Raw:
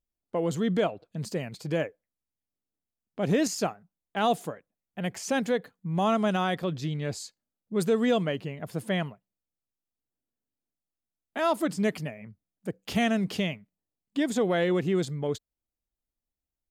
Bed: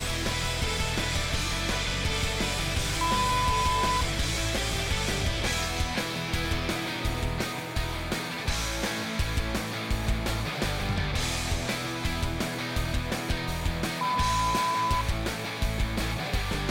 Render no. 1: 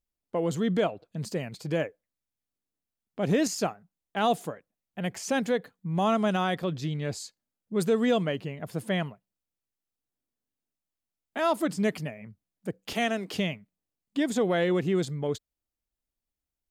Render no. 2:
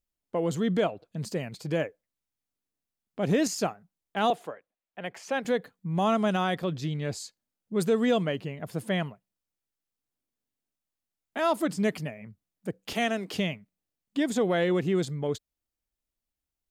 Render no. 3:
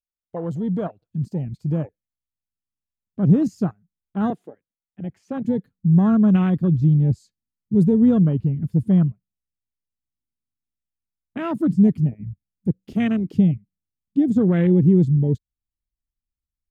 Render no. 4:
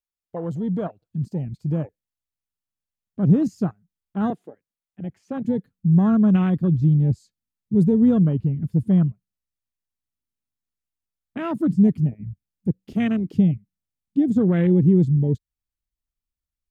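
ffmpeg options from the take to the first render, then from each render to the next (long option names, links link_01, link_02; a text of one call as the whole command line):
ffmpeg -i in.wav -filter_complex "[0:a]asettb=1/sr,asplit=3[link_01][link_02][link_03];[link_01]atrim=end=12.934[link_04];[link_02]atrim=start=12.93:end=13.34,asetpts=PTS-STARTPTS,afade=type=in:duration=0.004:curve=qsin,afade=type=out:start_time=0.406:duration=0.004:curve=qsin,highpass=frequency=260:width=0.5412,highpass=frequency=260:width=1.3066[link_05];[link_03]atrim=start=13.336[link_06];[link_04][link_05]acrossfade=duration=0.004:curve1=hsin:curve2=qsin[link_07];[link_07][link_06]acrossfade=duration=0.004:curve1=qsin:curve2=hsin" out.wav
ffmpeg -i in.wav -filter_complex "[0:a]asettb=1/sr,asplit=3[link_01][link_02][link_03];[link_01]atrim=end=4.304[link_04];[link_02]atrim=start=4.3:end=5.45,asetpts=PTS-STARTPTS,afade=type=in:duration=0.004:curve=qsin,afade=type=out:start_time=1.146:duration=0.004:curve=qsin,acrossover=split=360 3600:gain=0.224 1 0.251[link_05][link_06][link_07];[link_05][link_06][link_07]amix=inputs=3:normalize=0[link_08];[link_03]atrim=start=5.446[link_09];[link_04][link_08]acrossfade=duration=0.004:curve1=hsin:curve2=qsin[link_10];[link_10][link_09]acrossfade=duration=0.004:curve1=qsin:curve2=hsin" out.wav
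ffmpeg -i in.wav -af "afwtdn=0.0316,asubboost=boost=12:cutoff=190" out.wav
ffmpeg -i in.wav -af "volume=-1dB" out.wav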